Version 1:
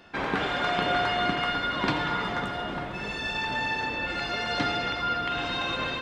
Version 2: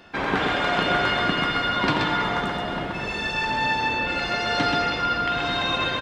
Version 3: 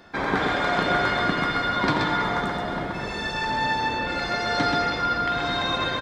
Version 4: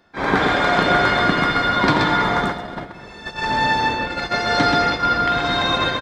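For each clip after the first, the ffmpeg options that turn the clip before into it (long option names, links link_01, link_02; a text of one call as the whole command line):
ffmpeg -i in.wav -af "aecho=1:1:128:0.631,volume=3.5dB" out.wav
ffmpeg -i in.wav -af "equalizer=frequency=2800:width_type=o:width=0.24:gain=-12" out.wav
ffmpeg -i in.wav -af "agate=range=-14dB:threshold=-26dB:ratio=16:detection=peak,volume=6dB" out.wav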